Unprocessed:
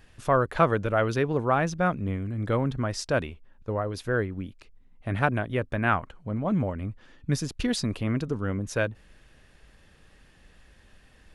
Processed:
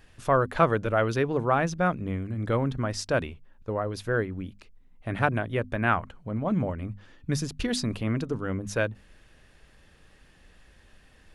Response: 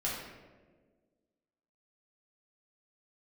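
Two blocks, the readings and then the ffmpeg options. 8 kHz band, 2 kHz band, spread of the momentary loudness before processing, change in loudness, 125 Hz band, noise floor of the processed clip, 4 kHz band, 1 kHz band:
0.0 dB, 0.0 dB, 10 LU, -0.5 dB, -1.0 dB, -57 dBFS, 0.0 dB, 0.0 dB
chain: -af "bandreject=f=50:t=h:w=6,bandreject=f=100:t=h:w=6,bandreject=f=150:t=h:w=6,bandreject=f=200:t=h:w=6,bandreject=f=250:t=h:w=6"

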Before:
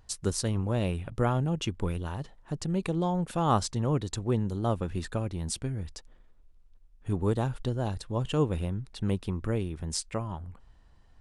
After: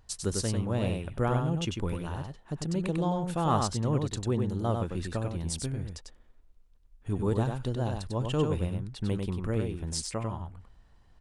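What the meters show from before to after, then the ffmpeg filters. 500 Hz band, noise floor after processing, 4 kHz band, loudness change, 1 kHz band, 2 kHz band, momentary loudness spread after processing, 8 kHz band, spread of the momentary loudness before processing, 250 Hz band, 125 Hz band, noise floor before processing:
-0.5 dB, -59 dBFS, 0.0 dB, -0.5 dB, -0.5 dB, 0.0 dB, 9 LU, 0.0 dB, 9 LU, -0.5 dB, 0.0 dB, -57 dBFS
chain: -af "acontrast=83,aecho=1:1:97:0.596,volume=-8.5dB"

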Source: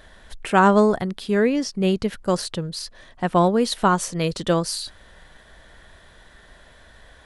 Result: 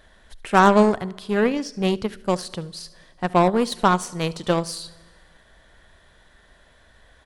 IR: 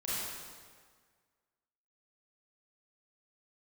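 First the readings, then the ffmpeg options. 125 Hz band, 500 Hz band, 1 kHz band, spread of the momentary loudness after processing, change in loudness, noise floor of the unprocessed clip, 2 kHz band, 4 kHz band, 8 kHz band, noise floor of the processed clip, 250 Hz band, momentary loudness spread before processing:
-1.5 dB, -0.5 dB, +1.0 dB, 17 LU, 0.0 dB, -50 dBFS, +0.5 dB, -2.0 dB, -4.0 dB, -55 dBFS, -1.0 dB, 13 LU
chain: -filter_complex "[0:a]aecho=1:1:72:0.133,asplit=2[a][b];[1:a]atrim=start_sample=2205[c];[b][c]afir=irnorm=-1:irlink=0,volume=-22.5dB[d];[a][d]amix=inputs=2:normalize=0,aeval=exprs='0.668*(cos(1*acos(clip(val(0)/0.668,-1,1)))-cos(1*PI/2))+0.0473*(cos(3*acos(clip(val(0)/0.668,-1,1)))-cos(3*PI/2))+0.0119*(cos(5*acos(clip(val(0)/0.668,-1,1)))-cos(5*PI/2))+0.0422*(cos(7*acos(clip(val(0)/0.668,-1,1)))-cos(7*PI/2))':c=same,volume=1.5dB"

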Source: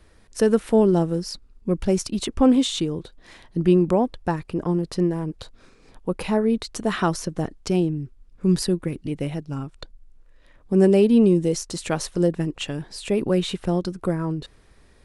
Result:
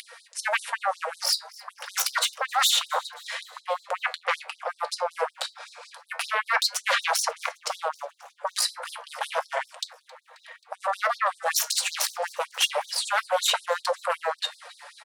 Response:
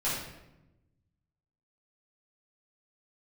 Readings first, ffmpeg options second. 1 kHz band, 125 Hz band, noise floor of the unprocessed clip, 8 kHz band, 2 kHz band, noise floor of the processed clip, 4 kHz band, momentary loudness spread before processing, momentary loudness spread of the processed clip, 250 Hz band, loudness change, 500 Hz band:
+5.0 dB, under -40 dB, -54 dBFS, +6.0 dB, +9.5 dB, -60 dBFS, +7.0 dB, 14 LU, 14 LU, under -40 dB, -4.5 dB, -10.0 dB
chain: -filter_complex "[0:a]areverse,acompressor=threshold=-26dB:ratio=20,areverse,bass=f=250:g=12,treble=f=4k:g=-4,aecho=1:1:4.3:0.63,aeval=exprs='0.299*sin(PI/2*6.31*val(0)/0.299)':c=same,asplit=2[a][b];[b]asplit=5[c][d][e][f][g];[c]adelay=267,afreqshift=120,volume=-22.5dB[h];[d]adelay=534,afreqshift=240,volume=-26.8dB[i];[e]adelay=801,afreqshift=360,volume=-31.1dB[j];[f]adelay=1068,afreqshift=480,volume=-35.4dB[k];[g]adelay=1335,afreqshift=600,volume=-39.7dB[l];[h][i][j][k][l]amix=inputs=5:normalize=0[m];[a][m]amix=inputs=2:normalize=0,acompressor=mode=upward:threshold=-19dB:ratio=2.5,equalizer=f=640:t=o:w=1.6:g=-3,flanger=delay=9:depth=7.4:regen=66:speed=0.29:shape=triangular,afftfilt=real='re*gte(b*sr/1024,450*pow(3800/450,0.5+0.5*sin(2*PI*5.3*pts/sr)))':imag='im*gte(b*sr/1024,450*pow(3800/450,0.5+0.5*sin(2*PI*5.3*pts/sr)))':win_size=1024:overlap=0.75"

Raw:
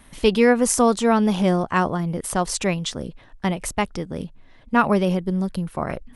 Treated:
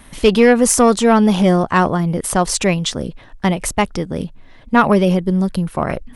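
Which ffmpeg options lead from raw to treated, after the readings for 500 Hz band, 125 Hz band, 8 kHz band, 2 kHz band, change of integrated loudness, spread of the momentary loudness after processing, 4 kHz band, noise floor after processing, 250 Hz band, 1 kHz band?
+6.0 dB, +6.5 dB, +6.5 dB, +5.0 dB, +6.0 dB, 11 LU, +6.0 dB, -42 dBFS, +6.0 dB, +5.5 dB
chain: -af "acontrast=81"

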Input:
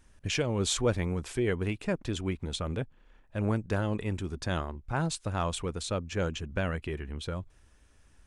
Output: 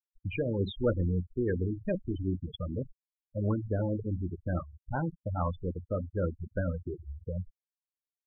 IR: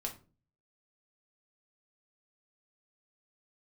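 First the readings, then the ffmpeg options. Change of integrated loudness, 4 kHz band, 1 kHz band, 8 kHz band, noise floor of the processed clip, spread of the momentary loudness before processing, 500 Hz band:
-1.5 dB, -14.0 dB, -4.0 dB, under -40 dB, under -85 dBFS, 9 LU, -1.0 dB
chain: -filter_complex "[0:a]asplit=2[a][b];[1:a]atrim=start_sample=2205,asetrate=57330,aresample=44100,lowpass=3.7k[c];[b][c]afir=irnorm=-1:irlink=0,volume=0dB[d];[a][d]amix=inputs=2:normalize=0,afftfilt=real='re*gte(hypot(re,im),0.126)':imag='im*gte(hypot(re,im),0.126)':win_size=1024:overlap=0.75,afftdn=nr=18:nf=-35,volume=-4.5dB"

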